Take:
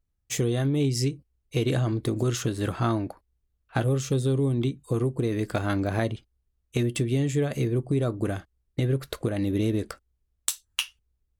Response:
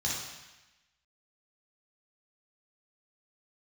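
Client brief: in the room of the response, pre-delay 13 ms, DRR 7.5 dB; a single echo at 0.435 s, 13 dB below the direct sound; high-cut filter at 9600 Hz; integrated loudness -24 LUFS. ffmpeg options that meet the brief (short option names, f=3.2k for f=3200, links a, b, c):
-filter_complex "[0:a]lowpass=9.6k,aecho=1:1:435:0.224,asplit=2[a][b];[1:a]atrim=start_sample=2205,adelay=13[c];[b][c]afir=irnorm=-1:irlink=0,volume=-14dB[d];[a][d]amix=inputs=2:normalize=0,volume=2dB"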